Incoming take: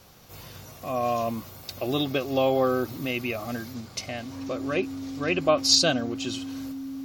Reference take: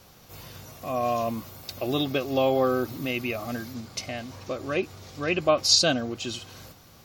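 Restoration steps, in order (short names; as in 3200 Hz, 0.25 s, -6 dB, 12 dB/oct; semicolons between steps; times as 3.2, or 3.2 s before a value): clip repair -8 dBFS; notch 270 Hz, Q 30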